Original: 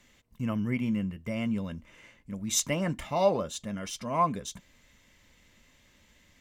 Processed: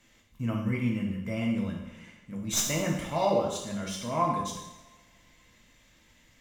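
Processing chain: tracing distortion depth 0.022 ms; two-slope reverb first 0.86 s, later 2.5 s, from -24 dB, DRR -2 dB; gain -3 dB

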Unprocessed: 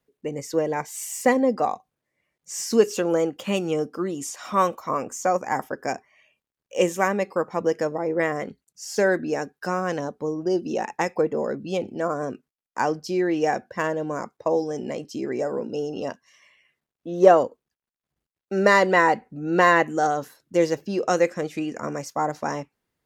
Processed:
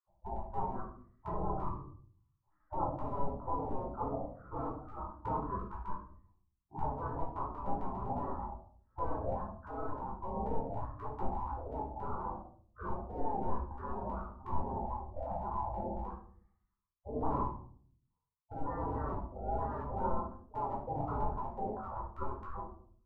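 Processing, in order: hard clip -16 dBFS, distortion -10 dB; steep low-pass 830 Hz 48 dB/oct; limiter -23.5 dBFS, peak gain reduction 11 dB; spectral gate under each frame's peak -30 dB weak; shoebox room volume 570 m³, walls furnished, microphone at 4.5 m; gain +17 dB

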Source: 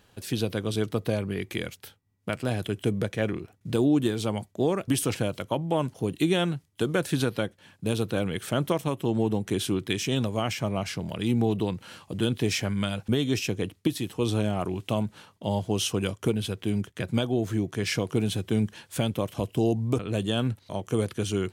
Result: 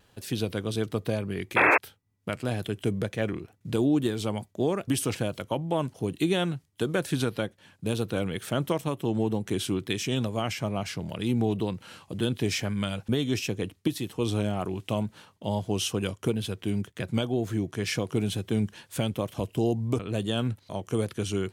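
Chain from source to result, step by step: wow and flutter 41 cents; painted sound noise, 1.56–1.78, 270–2700 Hz -18 dBFS; gain -1.5 dB

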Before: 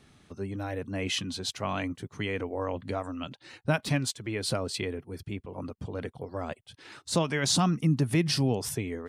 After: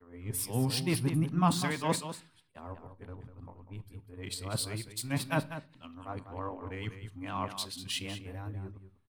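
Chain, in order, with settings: whole clip reversed; de-esser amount 60%; fifteen-band EQ 100 Hz +10 dB, 250 Hz +5 dB, 1000 Hz +9 dB, 6300 Hz -10 dB; vibrato 2.5 Hz 57 cents; pre-emphasis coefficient 0.8; in parallel at -6 dB: backlash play -40 dBFS; on the sum: echo 0.197 s -8 dB; on a send at -14.5 dB: reverb RT60 0.50 s, pre-delay 3 ms; on the sum: three-band expander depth 70%

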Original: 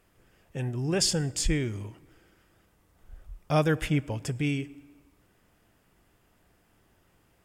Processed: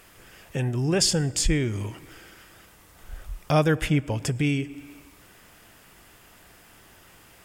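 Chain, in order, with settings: in parallel at +1 dB: compressor, threshold -35 dBFS, peak gain reduction 15 dB; on the sum: mismatched tape noise reduction encoder only; gain +1.5 dB

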